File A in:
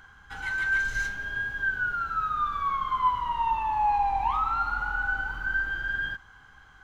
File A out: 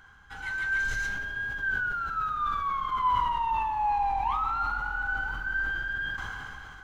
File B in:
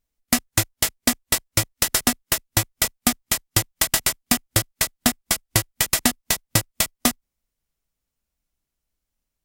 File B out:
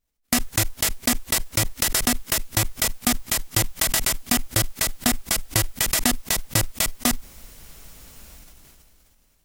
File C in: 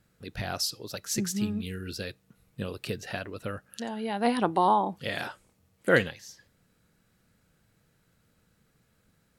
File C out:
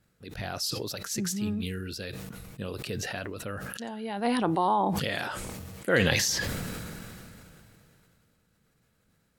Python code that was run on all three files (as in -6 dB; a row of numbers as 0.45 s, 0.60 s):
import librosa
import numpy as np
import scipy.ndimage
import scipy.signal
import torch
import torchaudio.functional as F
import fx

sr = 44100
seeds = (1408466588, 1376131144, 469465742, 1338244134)

y = fx.sustainer(x, sr, db_per_s=20.0)
y = y * 10.0 ** (-3.0 / 20.0)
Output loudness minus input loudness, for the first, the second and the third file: -1.5 LU, -1.0 LU, 0.0 LU